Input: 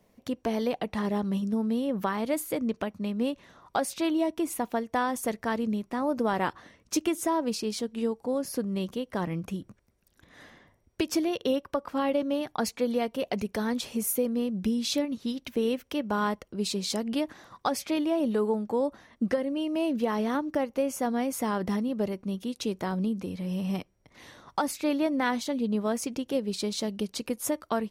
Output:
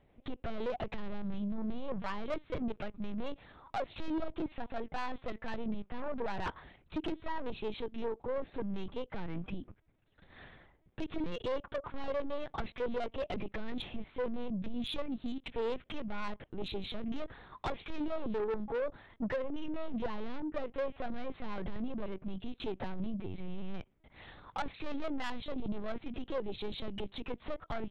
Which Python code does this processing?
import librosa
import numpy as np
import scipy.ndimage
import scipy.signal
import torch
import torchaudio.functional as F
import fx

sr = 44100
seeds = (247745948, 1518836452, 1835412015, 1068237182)

y = fx.lpc_vocoder(x, sr, seeds[0], excitation='pitch_kept', order=8)
y = 10.0 ** (-28.5 / 20.0) * np.tanh(y / 10.0 ** (-28.5 / 20.0))
y = y * librosa.db_to_amplitude(-1.5)